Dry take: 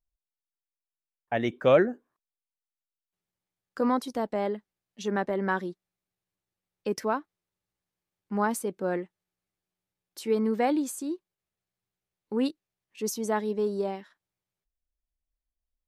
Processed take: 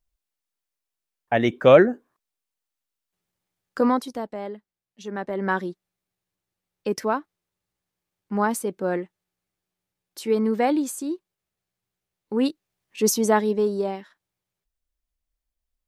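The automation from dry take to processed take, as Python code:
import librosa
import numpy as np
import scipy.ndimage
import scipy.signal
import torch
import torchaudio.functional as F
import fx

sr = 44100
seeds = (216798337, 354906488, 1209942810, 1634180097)

y = fx.gain(x, sr, db=fx.line((3.78, 7.0), (4.37, -4.0), (5.11, -4.0), (5.51, 4.0), (12.33, 4.0), (13.1, 11.0), (13.79, 4.0)))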